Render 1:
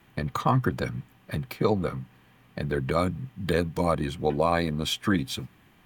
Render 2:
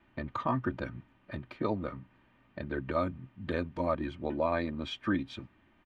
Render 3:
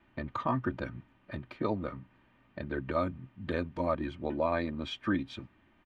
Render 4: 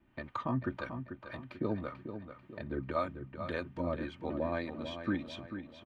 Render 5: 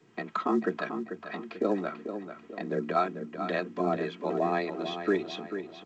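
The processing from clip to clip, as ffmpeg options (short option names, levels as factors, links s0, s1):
-af "lowpass=2700,aecho=1:1:3.3:0.55,volume=0.447"
-af anull
-filter_complex "[0:a]acrossover=split=490[s0][s1];[s0]aeval=exprs='val(0)*(1-0.7/2+0.7/2*cos(2*PI*1.8*n/s))':c=same[s2];[s1]aeval=exprs='val(0)*(1-0.7/2-0.7/2*cos(2*PI*1.8*n/s))':c=same[s3];[s2][s3]amix=inputs=2:normalize=0,asplit=2[s4][s5];[s5]adelay=441,lowpass=f=4900:p=1,volume=0.355,asplit=2[s6][s7];[s7]adelay=441,lowpass=f=4900:p=1,volume=0.44,asplit=2[s8][s9];[s9]adelay=441,lowpass=f=4900:p=1,volume=0.44,asplit=2[s10][s11];[s11]adelay=441,lowpass=f=4900:p=1,volume=0.44,asplit=2[s12][s13];[s13]adelay=441,lowpass=f=4900:p=1,volume=0.44[s14];[s4][s6][s8][s10][s12][s14]amix=inputs=6:normalize=0"
-af "afreqshift=97,volume=2.11" -ar 16000 -c:a pcm_alaw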